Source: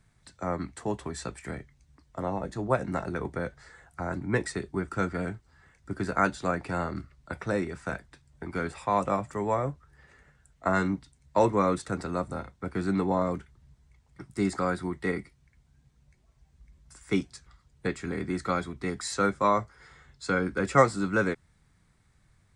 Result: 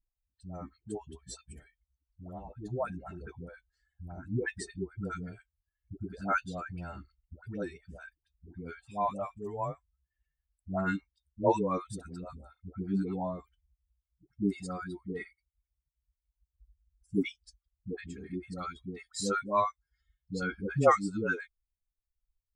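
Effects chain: expander on every frequency bin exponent 2; band-stop 2 kHz, Q 11; phase dispersion highs, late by 135 ms, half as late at 530 Hz

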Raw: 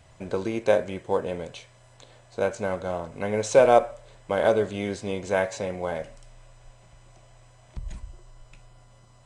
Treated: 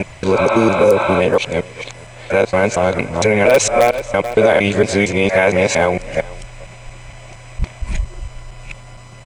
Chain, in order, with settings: time reversed locally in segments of 230 ms; peaking EQ 2.3 kHz +10.5 dB 0.44 oct; in parallel at -8 dB: integer overflow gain 7 dB; on the sum: spectral replace 0.38–1.18 s, 540–4300 Hz before; on a send: delay 436 ms -23.5 dB; on the sum: loudness maximiser +15.5 dB; trim -2 dB

